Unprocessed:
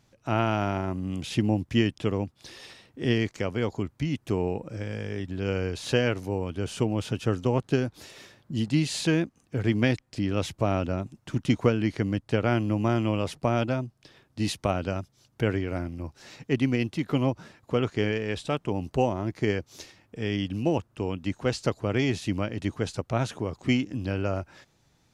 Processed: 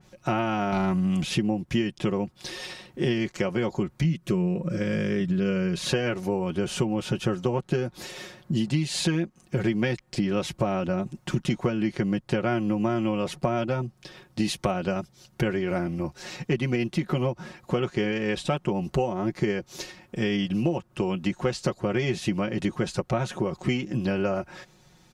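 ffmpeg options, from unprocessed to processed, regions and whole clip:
-filter_complex "[0:a]asettb=1/sr,asplit=3[s0][s1][s2];[s0]atrim=end=0.724[s3];[s1]atrim=start=0.72:end=1.24,asetpts=PTS-STARTPTS,afade=t=in:d=0.004:c=qsin,afade=t=out:st=0.516:d=0.004:c=qsin,equalizer=f=420:t=o:w=1:g=-8.5,aeval=exprs='0.15*sin(PI/2*1.41*val(0)/0.15)':c=same[s4];[s2]atrim=start=1.236[s5];[s3][s4]acrossfade=d=0.004:c1=hsin:c2=qsin[s6];[s6][s5]acrossfade=d=0.004:c1=qsin:c2=hsin,asettb=1/sr,asplit=3[s7][s8][s9];[s7]atrim=end=4.044[s10];[s8]atrim=start=4.04:end=5.89,asetpts=PTS-STARTPTS,afade=t=in:d=0.004:c=qsin,afade=t=out:st=1.846:d=0.004:c=qsin,asuperstop=centerf=810:order=4:qfactor=3.6,equalizer=f=170:w=4.2:g=9.5,acompressor=mode=upward:threshold=0.01:ratio=2.5:attack=3.2:release=140:knee=2.83:detection=peak[s11];[s9]atrim=start=5.886[s12];[s10][s11]acrossfade=d=0.004:c1=hsin:c2=qsin[s13];[s13][s12]acrossfade=d=0.004:c1=qsin:c2=hsin,aecho=1:1:5.5:0.76,acompressor=threshold=0.0355:ratio=6,adynamicequalizer=threshold=0.00251:dfrequency=2400:dqfactor=0.7:tfrequency=2400:tqfactor=0.7:attack=5:release=100:ratio=0.375:range=1.5:mode=cutabove:tftype=highshelf,volume=2.24"

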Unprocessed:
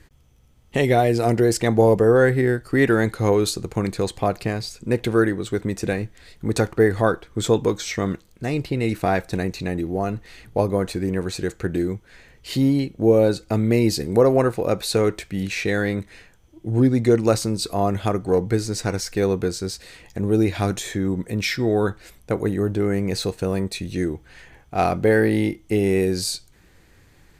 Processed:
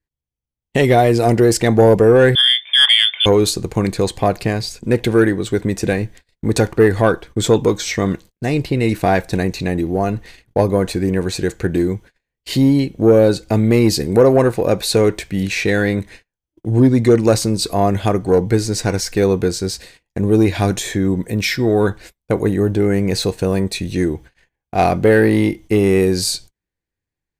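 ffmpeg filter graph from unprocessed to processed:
-filter_complex "[0:a]asettb=1/sr,asplit=3[s0][s1][s2];[s0]atrim=end=2.354[s3];[s1]atrim=start=2.35:end=3.26,asetpts=PTS-STARTPTS,afade=t=in:d=0.004:c=qsin,afade=t=out:st=0.906:d=0.004:c=qsin,lowpass=f=3100:t=q:w=0.5098,lowpass=f=3100:t=q:w=0.6013,lowpass=f=3100:t=q:w=0.9,lowpass=f=3100:t=q:w=2.563,afreqshift=-3600,highpass=490[s4];[s2]atrim=start=3.256[s5];[s3][s4]acrossfade=d=0.004:c1=hsin:c2=qsin[s6];[s6][s5]acrossfade=d=0.004:c1=qsin:c2=hsin,asettb=1/sr,asplit=3[s7][s8][s9];[s7]atrim=end=21.184[s10];[s8]atrim=start=21.18:end=21.8,asetpts=PTS-STARTPTS,afade=t=in:d=0.004:c=qsin,afade=t=out:st=0.616:d=0.004:c=qsin,lowpass=f=1900:p=1,aemphasis=mode=production:type=75fm[s11];[s9]atrim=start=21.796[s12];[s10][s11]acrossfade=d=0.004:c1=hsin:c2=qsin[s13];[s13][s12]acrossfade=d=0.004:c1=qsin:c2=hsin,bandreject=f=1300:w=8.8,agate=range=0.0126:threshold=0.00891:ratio=16:detection=peak,acontrast=58"

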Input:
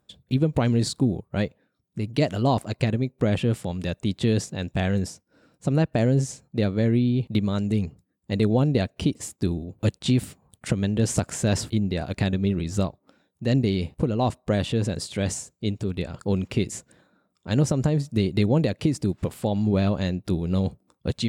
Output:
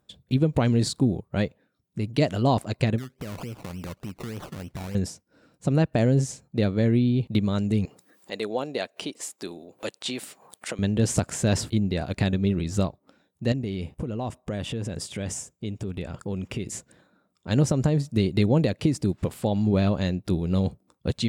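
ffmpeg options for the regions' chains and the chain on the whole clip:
-filter_complex "[0:a]asettb=1/sr,asplit=3[s0][s1][s2];[s0]atrim=end=2.984[s3];[s1]atrim=start=2.98:end=4.95,asetpts=PTS-STARTPTS,afade=t=in:d=0.004:c=qsin,afade=t=out:st=1.966:d=0.004:c=qsin,acompressor=threshold=0.0251:ratio=6:attack=3.2:release=140:knee=1:detection=peak,acrusher=samples=22:mix=1:aa=0.000001:lfo=1:lforange=13.2:lforate=3.4[s4];[s2]atrim=start=4.946[s5];[s3][s4]acrossfade=d=0.004:c1=hsin:c2=qsin[s6];[s6][s5]acrossfade=d=0.004:c1=qsin:c2=hsin,asettb=1/sr,asplit=3[s7][s8][s9];[s7]atrim=end=7.854[s10];[s8]atrim=start=7.85:end=10.79,asetpts=PTS-STARTPTS,afade=t=in:d=0.004:c=qsin,afade=t=out:st=2.936:d=0.004:c=qsin,highpass=510,acompressor=mode=upward:threshold=0.0141:ratio=2.5:attack=3.2:release=140:knee=2.83:detection=peak[s11];[s9]atrim=start=10.786[s12];[s10][s11]acrossfade=d=0.004:c1=hsin:c2=qsin[s13];[s13][s12]acrossfade=d=0.004:c1=qsin:c2=hsin,asettb=1/sr,asplit=3[s14][s15][s16];[s14]atrim=end=13.524[s17];[s15]atrim=start=13.52:end=16.67,asetpts=PTS-STARTPTS,afade=t=in:d=0.004:c=qsin,afade=t=out:st=3.146:d=0.004:c=qsin,equalizer=f=4200:w=7.8:g=-11,acompressor=threshold=0.0398:ratio=3:attack=3.2:release=140:knee=1:detection=peak[s18];[s16]atrim=start=16.666[s19];[s17][s18]acrossfade=d=0.004:c1=hsin:c2=qsin[s20];[s20][s19]acrossfade=d=0.004:c1=qsin:c2=hsin"

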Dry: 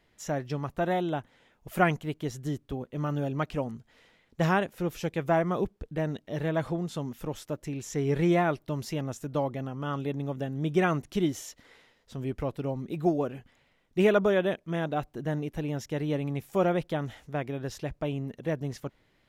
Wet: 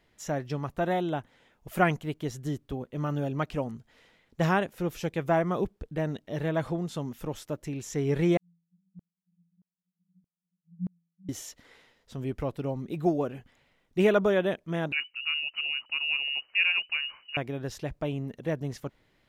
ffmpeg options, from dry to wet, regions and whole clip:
-filter_complex "[0:a]asettb=1/sr,asplit=3[s0][s1][s2];[s0]atrim=end=8.374[s3];[s1]atrim=start=8.37:end=11.29,asetpts=PTS-STARTPTS,afade=t=in:d=0.004:c=qsin,afade=t=out:st=2.916:d=0.004:c=qsin,asuperpass=centerf=180:order=12:qfactor=7.2,aeval=exprs='val(0)*pow(10,-37*if(lt(mod(-1.6*n/s,1),2*abs(-1.6)/1000),1-mod(-1.6*n/s,1)/(2*abs(-1.6)/1000),(mod(-1.6*n/s,1)-2*abs(-1.6)/1000)/(1-2*abs(-1.6)/1000))/20)':c=same[s4];[s2]atrim=start=11.286[s5];[s3][s4]acrossfade=d=0.004:c1=hsin:c2=qsin[s6];[s6][s5]acrossfade=d=0.004:c1=qsin:c2=hsin,asettb=1/sr,asplit=3[s7][s8][s9];[s7]atrim=end=14.924[s10];[s8]atrim=start=14.92:end=17.37,asetpts=PTS-STARTPTS,afade=t=in:d=0.004:c=qsin,afade=t=out:st=2.446:d=0.004:c=qsin,highshelf=f=2200:g=-9,lowpass=f=2600:t=q:w=0.5098,lowpass=f=2600:t=q:w=0.6013,lowpass=f=2600:t=q:w=0.9,lowpass=f=2600:t=q:w=2.563,afreqshift=-3000[s11];[s9]atrim=start=17.366[s12];[s10][s11]acrossfade=d=0.004:c1=hsin:c2=qsin[s13];[s13][s12]acrossfade=d=0.004:c1=qsin:c2=hsin"

